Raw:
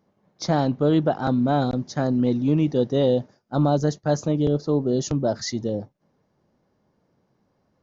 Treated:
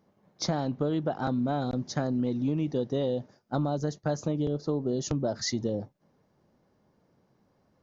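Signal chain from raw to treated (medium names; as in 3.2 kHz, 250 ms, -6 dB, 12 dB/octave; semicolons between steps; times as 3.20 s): compression, threshold -25 dBFS, peak gain reduction 10 dB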